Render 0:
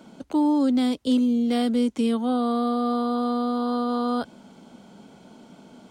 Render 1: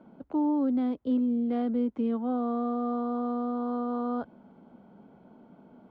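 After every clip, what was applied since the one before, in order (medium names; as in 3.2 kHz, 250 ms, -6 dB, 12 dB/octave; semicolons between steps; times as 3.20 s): low-pass 1.3 kHz 12 dB/octave; trim -5.5 dB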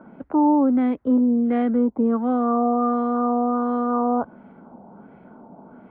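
LFO low-pass sine 1.4 Hz 840–2200 Hz; trim +7.5 dB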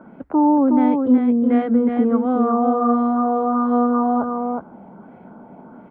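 delay 367 ms -4.5 dB; trim +2 dB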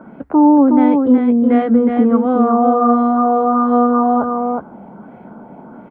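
doubling 14 ms -13 dB; trim +5 dB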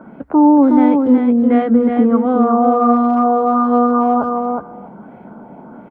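speakerphone echo 280 ms, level -17 dB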